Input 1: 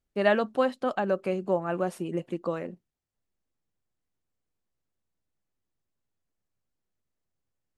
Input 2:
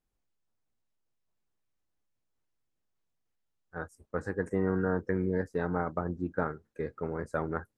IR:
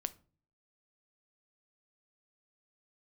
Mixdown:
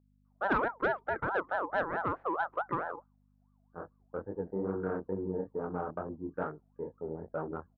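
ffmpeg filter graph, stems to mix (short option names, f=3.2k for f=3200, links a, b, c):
-filter_complex "[0:a]equalizer=f=320:w=7.5:g=7.5,aeval=exprs='val(0)*sin(2*PI*920*n/s+920*0.3/4.6*sin(2*PI*4.6*n/s))':c=same,adelay=250,volume=0.5dB[a];[1:a]afwtdn=0.0158,flanger=delay=19:depth=6.9:speed=2.3,aeval=exprs='val(0)+0.001*(sin(2*PI*50*n/s)+sin(2*PI*2*50*n/s)/2+sin(2*PI*3*50*n/s)/3+sin(2*PI*4*50*n/s)/4+sin(2*PI*5*50*n/s)/5)':c=same,volume=0dB,asplit=2[b][c];[c]volume=-23.5dB[d];[2:a]atrim=start_sample=2205[e];[d][e]afir=irnorm=-1:irlink=0[f];[a][b][f]amix=inputs=3:normalize=0,lowpass=f=1.5k:w=0.5412,lowpass=f=1.5k:w=1.3066,lowshelf=f=140:g=-11,asoftclip=type=tanh:threshold=-18.5dB"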